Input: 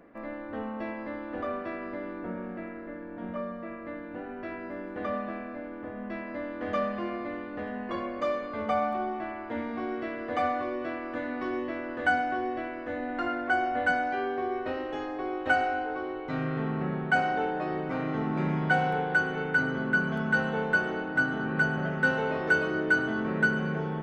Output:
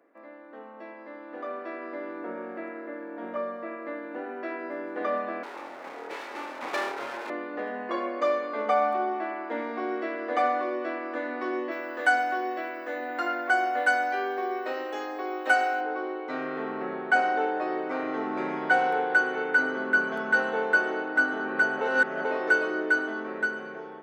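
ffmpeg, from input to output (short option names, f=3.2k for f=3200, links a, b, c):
-filter_complex "[0:a]asettb=1/sr,asplit=3[a][b][c];[a]atrim=end=5.434[d];[b]atrim=start=5.43:end=7.3,asetpts=PTS-STARTPTS,afade=t=in:d=0.004:c=qsin,afade=t=out:st=1.866:d=0.004:c=qsin,aeval=exprs='abs(val(0))':c=same[e];[c]atrim=start=7.296[f];[d][e]acrossfade=d=0.004:c1=hsin:c2=qsin[g];[g][f]acrossfade=d=0.004:c1=qsin:c2=hsin,asettb=1/sr,asplit=3[h][i][j];[h]atrim=end=11.714[k];[i]atrim=start=11.71:end=15.81,asetpts=PTS-STARTPTS,afade=t=in:d=0.004:c=qsin,afade=t=out:st=4.096:d=0.004:c=qsin,aemphasis=mode=production:type=bsi[l];[j]atrim=start=15.806[m];[k][l]acrossfade=d=0.004:c1=hsin:c2=qsin[n];[n][m]acrossfade=d=0.004:c1=qsin:c2=hsin,asplit=3[o][p][q];[o]atrim=end=21.812[r];[p]atrim=start=21.808:end=22.252,asetpts=PTS-STARTPTS,areverse[s];[q]atrim=start=22.248[t];[r][s]acrossfade=d=0.004:c1=hsin:c2=hsin[u];[u][t]acrossfade=d=0.004:c1=hsin:c2=hsin,highpass=f=300:w=0.5412,highpass=f=300:w=1.3066,equalizer=f=3k:w=2.8:g=-3.5,dynaudnorm=f=510:g=7:m=12dB,volume=-7.5dB"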